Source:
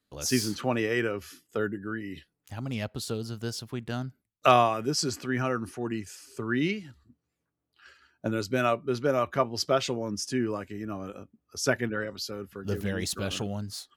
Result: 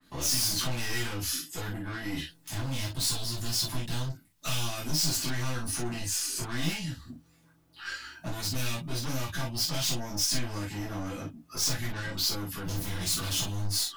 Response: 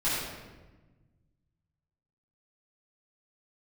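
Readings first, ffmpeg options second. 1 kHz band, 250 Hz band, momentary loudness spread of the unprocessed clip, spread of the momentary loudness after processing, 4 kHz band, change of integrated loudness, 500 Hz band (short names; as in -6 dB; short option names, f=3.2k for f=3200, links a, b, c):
-11.0 dB, -6.0 dB, 11 LU, 11 LU, +5.5 dB, -1.5 dB, -13.0 dB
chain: -filter_complex "[0:a]acrossover=split=150|3000[a][b][c];[b]acompressor=threshold=-41dB:ratio=10[d];[a][d][c]amix=inputs=3:normalize=0,aeval=exprs='(tanh(178*val(0)+0.05)-tanh(0.05))/178':c=same,asplit=2[e][f];[f]acompressor=threshold=-60dB:ratio=6,volume=1.5dB[g];[e][g]amix=inputs=2:normalize=0[h];[1:a]atrim=start_sample=2205,atrim=end_sample=3087[i];[h][i]afir=irnorm=-1:irlink=0,adynamicequalizer=threshold=0.002:dfrequency=3400:dqfactor=0.7:tfrequency=3400:tqfactor=0.7:attack=5:release=100:ratio=0.375:range=4:mode=boostabove:tftype=highshelf,volume=4dB"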